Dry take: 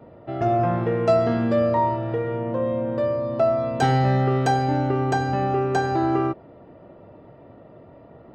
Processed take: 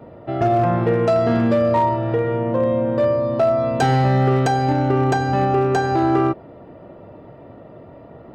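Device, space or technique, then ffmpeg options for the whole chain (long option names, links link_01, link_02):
limiter into clipper: -af "alimiter=limit=-13.5dB:level=0:latency=1:release=284,asoftclip=type=hard:threshold=-16dB,volume=5.5dB"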